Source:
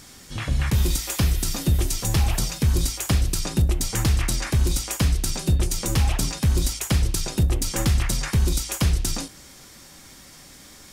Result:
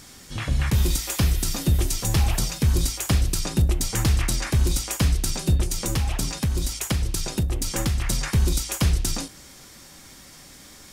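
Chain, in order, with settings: 5.61–8.07 compressor, threshold -20 dBFS, peak gain reduction 5 dB

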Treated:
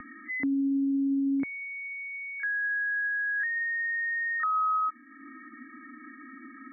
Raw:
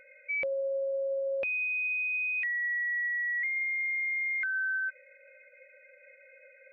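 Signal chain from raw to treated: upward compressor, threshold -40 dBFS; pre-echo 35 ms -19 dB; mistuned SSB -270 Hz 200–2100 Hz; gain +4 dB

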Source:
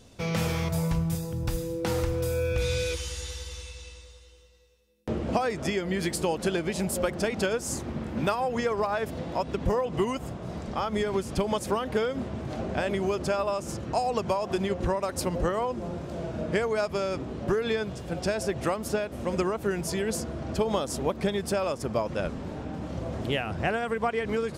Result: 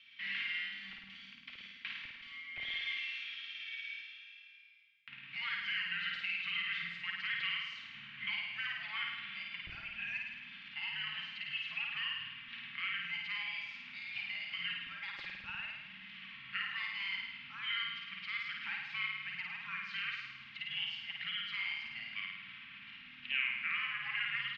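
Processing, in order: inverse Chebyshev band-stop 320–870 Hz, stop band 70 dB; comb 4.1 ms, depth 34%; in parallel at 0 dB: negative-ratio compressor -44 dBFS, ratio -1; on the sum: wavefolder -21 dBFS; on a send: flutter echo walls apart 9.1 m, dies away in 1.1 s; on the sum: mistuned SSB -360 Hz 290–3300 Hz

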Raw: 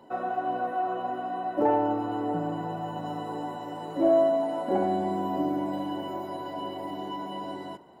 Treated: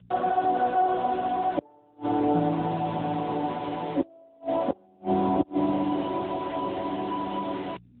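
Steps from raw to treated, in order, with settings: LPF 1700 Hz 6 dB/oct; loudest bins only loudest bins 64; bit-crush 7-bit; buzz 60 Hz, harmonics 3, -54 dBFS -3 dB/oct; flipped gate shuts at -18 dBFS, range -36 dB; gain +6.5 dB; AMR-NB 10.2 kbps 8000 Hz

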